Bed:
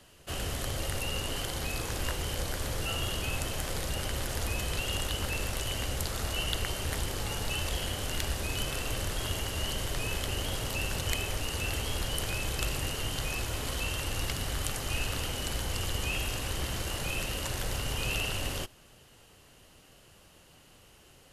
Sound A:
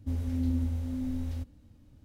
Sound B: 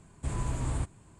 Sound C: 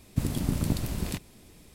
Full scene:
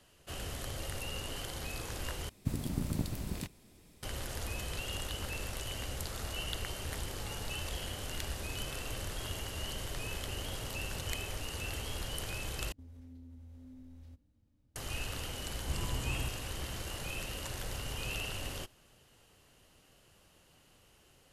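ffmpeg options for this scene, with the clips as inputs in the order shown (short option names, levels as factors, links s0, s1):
-filter_complex "[0:a]volume=0.473[s0];[1:a]acompressor=threshold=0.0224:ratio=6:attack=3.2:release=140:knee=1:detection=peak[s1];[s0]asplit=3[s2][s3][s4];[s2]atrim=end=2.294[s5];[3:a]atrim=end=1.74,asetpts=PTS-STARTPTS,volume=0.447[s6];[s3]atrim=start=4.026:end=12.724[s7];[s1]atrim=end=2.04,asetpts=PTS-STARTPTS,volume=0.178[s8];[s4]atrim=start=14.756[s9];[2:a]atrim=end=1.19,asetpts=PTS-STARTPTS,volume=0.501,afade=t=in:d=0.004:c=hsin,afade=t=out:st=1.186:d=0.004:c=hsin,adelay=15440[s10];[s5][s6]acrossfade=d=0.004:c1=hsin:c2=hsin[s11];[s11][s7]acrossfade=d=0.004:c1=hsin:c2=hsin[s12];[s12][s8]acrossfade=d=0.004:c1=hsin:c2=hsin[s13];[s13][s9]acrossfade=d=0.004:c1=hsin:c2=hsin[s14];[s14][s10]amix=inputs=2:normalize=0"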